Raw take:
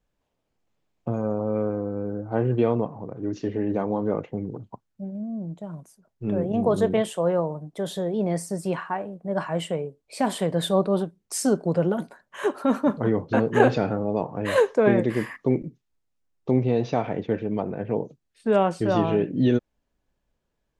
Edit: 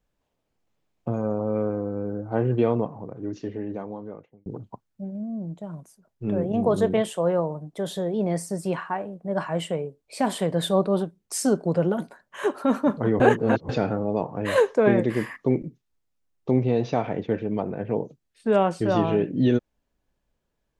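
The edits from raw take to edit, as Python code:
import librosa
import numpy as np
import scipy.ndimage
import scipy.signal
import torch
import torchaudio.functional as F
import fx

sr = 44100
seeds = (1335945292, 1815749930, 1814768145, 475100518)

y = fx.edit(x, sr, fx.fade_out_span(start_s=2.83, length_s=1.63),
    fx.reverse_span(start_s=13.2, length_s=0.49), tone=tone)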